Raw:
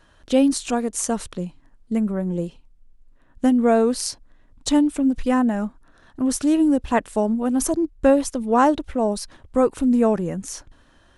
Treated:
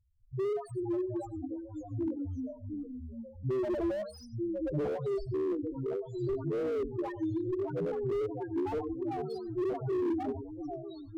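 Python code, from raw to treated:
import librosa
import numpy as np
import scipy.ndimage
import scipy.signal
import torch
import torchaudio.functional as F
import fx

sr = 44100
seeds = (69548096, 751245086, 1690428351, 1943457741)

y = fx.cycle_switch(x, sr, every=2, mode='inverted')
y = fx.peak_eq(y, sr, hz=610.0, db=10.0, octaves=0.3, at=(3.53, 4.78))
y = fx.env_lowpass(y, sr, base_hz=1700.0, full_db=-15.5)
y = fx.dispersion(y, sr, late='highs', ms=140.0, hz=460.0)
y = fx.cabinet(y, sr, low_hz=210.0, low_slope=12, high_hz=5700.0, hz=(260.0, 570.0, 840.0, 1300.0, 2300.0, 4400.0), db=(-5, -10, 5, 7, 6, 7), at=(8.94, 9.68))
y = fx.spec_topn(y, sr, count=1)
y = y + 10.0 ** (-17.0 / 20.0) * np.pad(y, (int(91 * sr / 1000.0), 0))[:len(y)]
y = fx.echo_pitch(y, sr, ms=466, semitones=-2, count=3, db_per_echo=-6.0)
y = fx.slew_limit(y, sr, full_power_hz=24.0)
y = F.gain(torch.from_numpy(y), -5.0).numpy()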